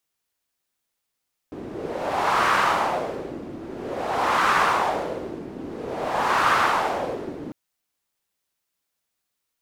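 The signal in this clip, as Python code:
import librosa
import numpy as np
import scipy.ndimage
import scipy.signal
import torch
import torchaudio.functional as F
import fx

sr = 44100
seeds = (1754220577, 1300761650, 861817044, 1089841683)

y = fx.wind(sr, seeds[0], length_s=6.0, low_hz=300.0, high_hz=1200.0, q=2.3, gusts=3, swing_db=16)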